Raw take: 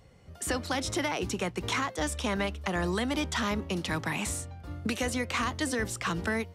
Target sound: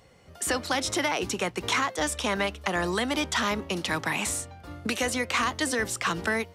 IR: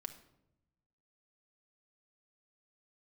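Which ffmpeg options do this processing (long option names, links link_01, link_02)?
-af "lowshelf=frequency=220:gain=-10.5,volume=5dB"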